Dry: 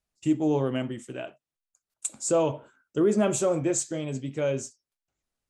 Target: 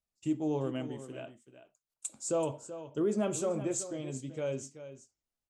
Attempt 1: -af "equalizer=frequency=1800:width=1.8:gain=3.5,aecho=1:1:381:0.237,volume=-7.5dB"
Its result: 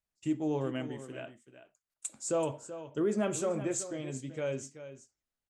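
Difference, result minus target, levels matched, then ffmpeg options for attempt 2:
2,000 Hz band +4.5 dB
-af "equalizer=frequency=1800:width=1.8:gain=-3.5,aecho=1:1:381:0.237,volume=-7.5dB"

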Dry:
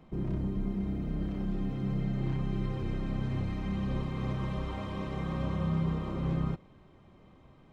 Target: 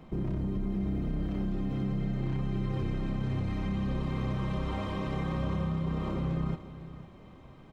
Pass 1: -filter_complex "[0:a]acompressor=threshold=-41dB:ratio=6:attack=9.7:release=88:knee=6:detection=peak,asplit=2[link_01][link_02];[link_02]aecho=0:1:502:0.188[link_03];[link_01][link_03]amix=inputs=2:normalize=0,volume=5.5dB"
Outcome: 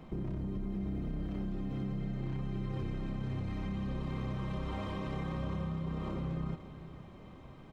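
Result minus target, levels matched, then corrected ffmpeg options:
downward compressor: peak gain reduction +5.5 dB
-filter_complex "[0:a]acompressor=threshold=-34.5dB:ratio=6:attack=9.7:release=88:knee=6:detection=peak,asplit=2[link_01][link_02];[link_02]aecho=0:1:502:0.188[link_03];[link_01][link_03]amix=inputs=2:normalize=0,volume=5.5dB"

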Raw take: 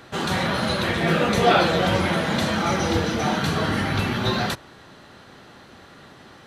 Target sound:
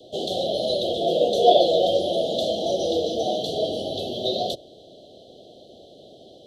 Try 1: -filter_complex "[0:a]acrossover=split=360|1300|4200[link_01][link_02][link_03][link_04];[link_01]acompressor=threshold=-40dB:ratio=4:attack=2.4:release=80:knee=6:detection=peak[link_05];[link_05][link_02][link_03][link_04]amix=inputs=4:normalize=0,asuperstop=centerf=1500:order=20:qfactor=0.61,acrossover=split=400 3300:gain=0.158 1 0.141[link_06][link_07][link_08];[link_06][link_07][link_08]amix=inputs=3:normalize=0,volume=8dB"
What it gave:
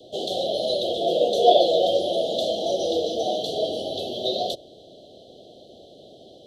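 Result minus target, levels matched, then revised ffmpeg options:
downward compressor: peak gain reduction +5.5 dB
-filter_complex "[0:a]acrossover=split=360|1300|4200[link_01][link_02][link_03][link_04];[link_01]acompressor=threshold=-32.5dB:ratio=4:attack=2.4:release=80:knee=6:detection=peak[link_05];[link_05][link_02][link_03][link_04]amix=inputs=4:normalize=0,asuperstop=centerf=1500:order=20:qfactor=0.61,acrossover=split=400 3300:gain=0.158 1 0.141[link_06][link_07][link_08];[link_06][link_07][link_08]amix=inputs=3:normalize=0,volume=8dB"

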